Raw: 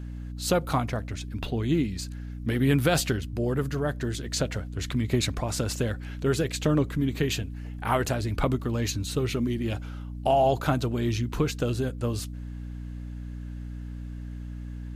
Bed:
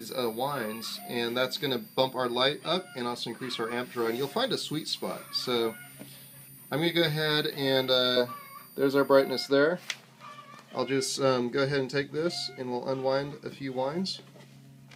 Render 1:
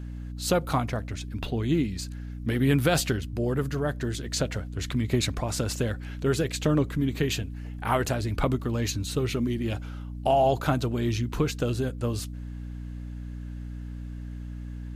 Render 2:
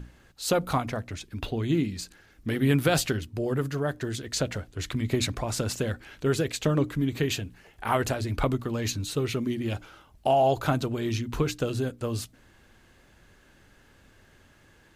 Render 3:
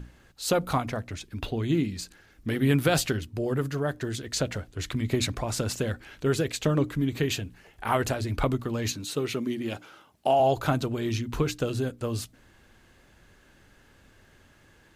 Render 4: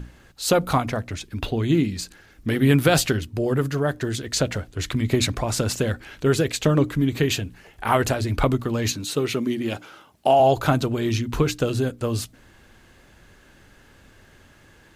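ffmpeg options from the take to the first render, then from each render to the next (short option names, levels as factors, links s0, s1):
-af anull
-af "bandreject=f=60:t=h:w=6,bandreject=f=120:t=h:w=6,bandreject=f=180:t=h:w=6,bandreject=f=240:t=h:w=6,bandreject=f=300:t=h:w=6"
-filter_complex "[0:a]asettb=1/sr,asplit=3[s0][s1][s2];[s0]atrim=end=8.924[s3];[s1]atrim=start=8.92:end=10.4,asetpts=PTS-STARTPTS,afade=t=in:d=0.004:c=qsin,afade=t=out:st=1.476:d=0.004:c=qsin,highpass=170[s4];[s2]atrim=start=10.396[s5];[s3][s4]acrossfade=d=0.004:c1=hsin:c2=qsin[s6];[s6][s5]acrossfade=d=0.004:c1=qsin:c2=hsin"
-af "volume=1.88"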